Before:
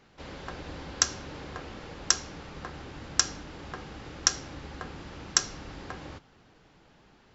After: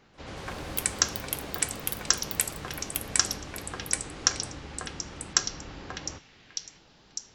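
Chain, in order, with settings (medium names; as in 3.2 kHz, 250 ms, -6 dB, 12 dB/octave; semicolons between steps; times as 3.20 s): repeats whose band climbs or falls 602 ms, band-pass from 2.6 kHz, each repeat 0.7 oct, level -5.5 dB; ever faster or slower copies 138 ms, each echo +6 st, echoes 3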